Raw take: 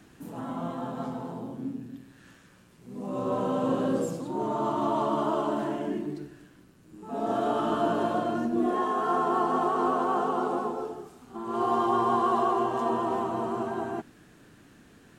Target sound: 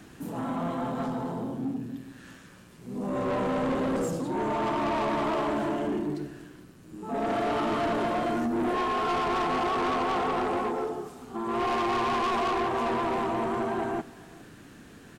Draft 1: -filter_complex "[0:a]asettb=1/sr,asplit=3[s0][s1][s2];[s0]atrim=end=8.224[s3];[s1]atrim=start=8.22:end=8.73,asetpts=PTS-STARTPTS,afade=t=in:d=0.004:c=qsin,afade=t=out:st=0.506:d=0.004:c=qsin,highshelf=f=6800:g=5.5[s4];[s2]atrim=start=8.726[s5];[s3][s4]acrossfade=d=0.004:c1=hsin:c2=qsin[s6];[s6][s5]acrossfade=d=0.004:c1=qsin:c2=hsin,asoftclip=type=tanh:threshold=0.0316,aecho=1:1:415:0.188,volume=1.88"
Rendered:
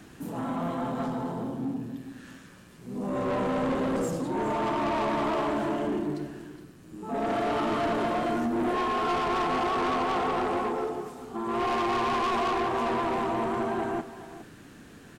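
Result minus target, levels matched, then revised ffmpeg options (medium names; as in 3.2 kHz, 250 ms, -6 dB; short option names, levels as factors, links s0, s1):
echo-to-direct +8 dB
-filter_complex "[0:a]asettb=1/sr,asplit=3[s0][s1][s2];[s0]atrim=end=8.224[s3];[s1]atrim=start=8.22:end=8.73,asetpts=PTS-STARTPTS,afade=t=in:d=0.004:c=qsin,afade=t=out:st=0.506:d=0.004:c=qsin,highshelf=f=6800:g=5.5[s4];[s2]atrim=start=8.726[s5];[s3][s4]acrossfade=d=0.004:c1=hsin:c2=qsin[s6];[s6][s5]acrossfade=d=0.004:c1=qsin:c2=hsin,asoftclip=type=tanh:threshold=0.0316,aecho=1:1:415:0.075,volume=1.88"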